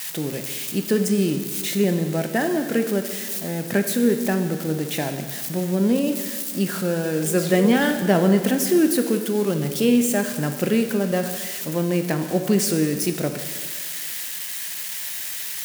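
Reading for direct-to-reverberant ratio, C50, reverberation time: 6.0 dB, 8.0 dB, 1.7 s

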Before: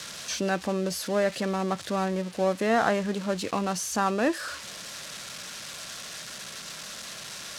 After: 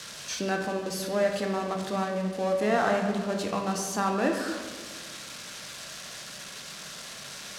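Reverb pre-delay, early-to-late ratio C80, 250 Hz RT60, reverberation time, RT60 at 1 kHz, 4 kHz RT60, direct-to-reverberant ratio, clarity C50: 11 ms, 7.0 dB, 2.2 s, 1.6 s, 1.5 s, 0.85 s, 2.5 dB, 5.0 dB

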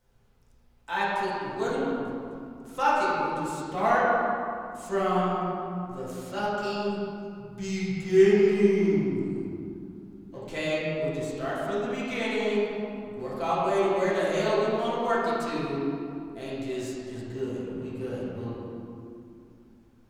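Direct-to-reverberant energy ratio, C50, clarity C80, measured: −10.0 dB, −3.0 dB, −1.0 dB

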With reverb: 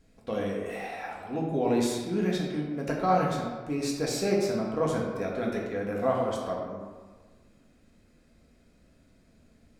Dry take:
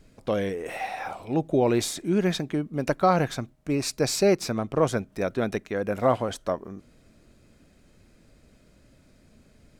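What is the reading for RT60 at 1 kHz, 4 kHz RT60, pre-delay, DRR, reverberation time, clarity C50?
1.4 s, 0.85 s, 3 ms, −3.0 dB, 1.4 s, 2.0 dB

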